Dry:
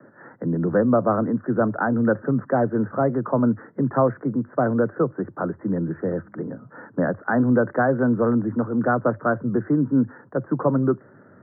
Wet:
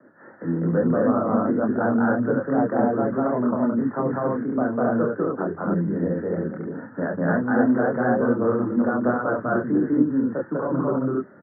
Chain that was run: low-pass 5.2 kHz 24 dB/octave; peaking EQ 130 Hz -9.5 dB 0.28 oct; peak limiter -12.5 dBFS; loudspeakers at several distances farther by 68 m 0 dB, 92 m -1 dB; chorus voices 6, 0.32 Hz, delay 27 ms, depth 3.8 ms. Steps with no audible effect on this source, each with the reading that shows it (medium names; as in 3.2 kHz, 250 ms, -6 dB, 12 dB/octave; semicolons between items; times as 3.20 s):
low-pass 5.2 kHz: input has nothing above 1.8 kHz